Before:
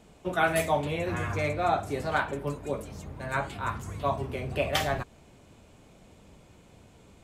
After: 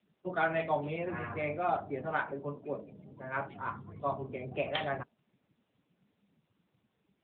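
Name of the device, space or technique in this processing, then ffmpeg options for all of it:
mobile call with aggressive noise cancelling: -filter_complex "[0:a]asettb=1/sr,asplit=3[link_01][link_02][link_03];[link_01]atrim=end=2.214[link_04];[link_02]atrim=start=2.21:end=3.39,asetpts=PTS-STARTPTS,afade=type=in:duration=0.004:curve=qsin,afade=type=out:start_time=1.176:duration=0.004:curve=qsin,highpass=110[link_05];[link_03]atrim=start=3.386[link_06];[link_04][link_05]acrossfade=duration=0.004:curve1=hsin:curve2=qsin[link_07];[link_07][link_06]acrossfade=duration=0.004:curve1=qsin:curve2=hsin,highpass=120,afftdn=noise_reduction=19:noise_floor=-41,volume=-4.5dB" -ar 8000 -c:a libopencore_amrnb -b:a 10200

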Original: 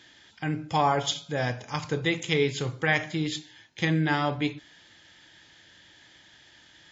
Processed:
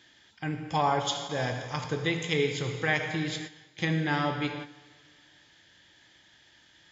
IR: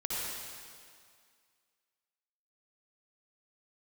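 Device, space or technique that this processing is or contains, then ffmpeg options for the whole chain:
keyed gated reverb: -filter_complex "[0:a]asplit=3[link_01][link_02][link_03];[1:a]atrim=start_sample=2205[link_04];[link_02][link_04]afir=irnorm=-1:irlink=0[link_05];[link_03]apad=whole_len=305028[link_06];[link_05][link_06]sidechaingate=range=-12dB:threshold=-43dB:ratio=16:detection=peak,volume=-8.5dB[link_07];[link_01][link_07]amix=inputs=2:normalize=0,volume=-5dB"

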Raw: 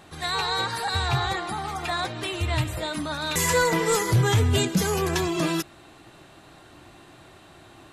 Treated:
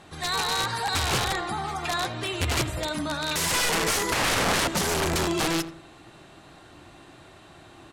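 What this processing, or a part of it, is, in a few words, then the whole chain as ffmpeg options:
overflowing digital effects unit: -filter_complex "[0:a]asettb=1/sr,asplit=3[link_01][link_02][link_03];[link_01]atrim=end=4.124[link_04];[link_02]atrim=start=4.12:end=4.68,asetpts=PTS-STARTPTS,afade=type=in:duration=0.004:curve=qsin,afade=type=out:start_time=0.556:duration=0.004:curve=qsin,tiltshelf=frequency=1300:gain=8.5[link_05];[link_03]atrim=start=4.676[link_06];[link_04][link_05]acrossfade=duration=0.004:curve1=hsin:curve2=qsin[link_07];[link_07][link_06]acrossfade=duration=0.004:curve1=qsin:curve2=hsin,aeval=exprs='(mod(8.41*val(0)+1,2)-1)/8.41':channel_layout=same,lowpass=11000,asplit=2[link_08][link_09];[link_09]adelay=85,lowpass=frequency=1400:poles=1,volume=-11dB,asplit=2[link_10][link_11];[link_11]adelay=85,lowpass=frequency=1400:poles=1,volume=0.37,asplit=2[link_12][link_13];[link_13]adelay=85,lowpass=frequency=1400:poles=1,volume=0.37,asplit=2[link_14][link_15];[link_15]adelay=85,lowpass=frequency=1400:poles=1,volume=0.37[link_16];[link_08][link_10][link_12][link_14][link_16]amix=inputs=5:normalize=0"

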